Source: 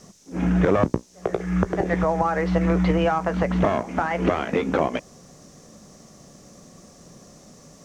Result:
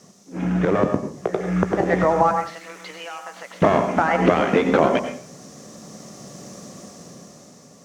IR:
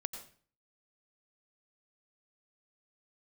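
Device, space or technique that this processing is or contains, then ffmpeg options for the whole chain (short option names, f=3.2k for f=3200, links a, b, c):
far laptop microphone: -filter_complex "[0:a]asettb=1/sr,asplit=3[a][b][c];[a]atrim=end=2.314[d];[b]atrim=start=2.31:end=3.62,asetpts=PTS-STARTPTS,afade=t=in:d=0.004:c=qsin,afade=t=out:st=1.306:d=0.004:c=qsin,aderivative[e];[c]atrim=start=3.616[f];[d][e]acrossfade=d=0.004:c1=hsin:c2=qsin[g];[g][f]acrossfade=d=0.004:c1=qsin:c2=hsin[h];[1:a]atrim=start_sample=2205[i];[h][i]afir=irnorm=-1:irlink=0,highpass=120,dynaudnorm=f=360:g=7:m=11dB"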